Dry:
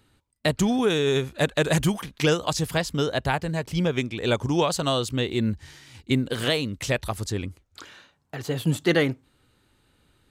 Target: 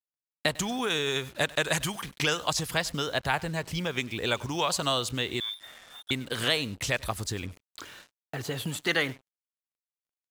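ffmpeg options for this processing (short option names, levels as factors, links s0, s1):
-filter_complex "[0:a]acrossover=split=780[s0][s1];[s0]acompressor=threshold=0.0282:ratio=10[s2];[s2][s1]amix=inputs=2:normalize=0,aecho=1:1:99:0.0794,asettb=1/sr,asplit=3[s3][s4][s5];[s3]atrim=end=5.404[s6];[s4]atrim=start=5.4:end=6.11,asetpts=PTS-STARTPTS,afade=t=in:d=0.004:c=qsin,afade=t=out:st=0.706:d=0.004:c=qsin,lowpass=f=3100:t=q:w=0.5098,lowpass=f=3100:t=q:w=0.6013,lowpass=f=3100:t=q:w=0.9,lowpass=f=3100:t=q:w=2.563,afreqshift=-3700[s7];[s5]atrim=start=6.106[s8];[s6][s7]acrossfade=d=0.004:c1=hsin:c2=qsin[s9];[s9][s8]acrossfade=d=0.004:c1=qsin:c2=hsin,acrusher=bits=7:mix=0:aa=0.5"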